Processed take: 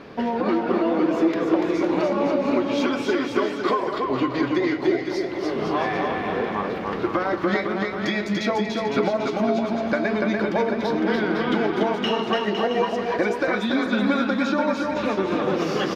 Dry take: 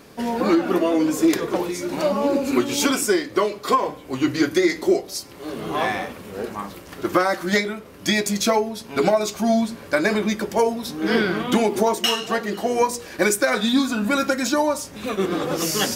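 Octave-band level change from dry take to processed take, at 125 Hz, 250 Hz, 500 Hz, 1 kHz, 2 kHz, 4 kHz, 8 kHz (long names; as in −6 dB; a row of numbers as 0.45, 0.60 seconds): 0.0 dB, −0.5 dB, −1.0 dB, −1.0 dB, −1.5 dB, −5.5 dB, below −15 dB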